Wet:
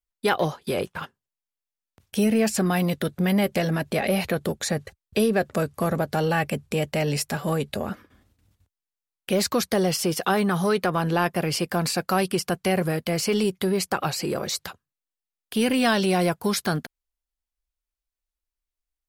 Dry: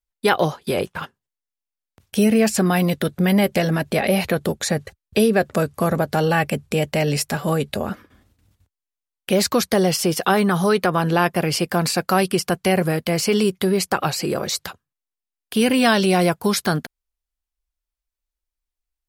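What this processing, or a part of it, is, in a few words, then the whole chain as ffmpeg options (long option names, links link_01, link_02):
parallel distortion: -filter_complex "[0:a]asplit=2[link_01][link_02];[link_02]asoftclip=type=hard:threshold=-20.5dB,volume=-12.5dB[link_03];[link_01][link_03]amix=inputs=2:normalize=0,volume=-5.5dB"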